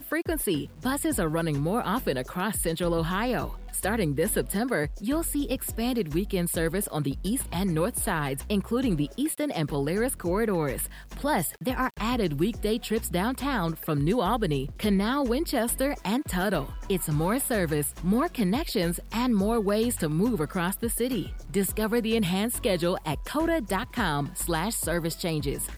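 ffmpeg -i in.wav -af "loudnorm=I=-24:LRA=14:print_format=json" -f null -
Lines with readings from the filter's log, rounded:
"input_i" : "-27.6",
"input_tp" : "-12.5",
"input_lra" : "1.8",
"input_thresh" : "-37.6",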